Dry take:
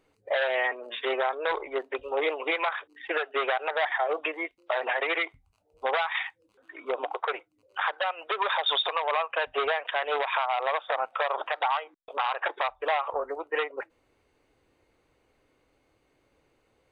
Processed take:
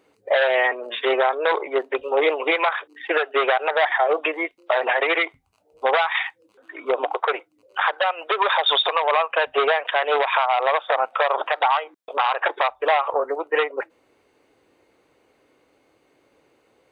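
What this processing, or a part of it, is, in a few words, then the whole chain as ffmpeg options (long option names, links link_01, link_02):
filter by subtraction: -filter_complex "[0:a]asplit=2[link_01][link_02];[link_02]lowpass=340,volume=-1[link_03];[link_01][link_03]amix=inputs=2:normalize=0,volume=6.5dB"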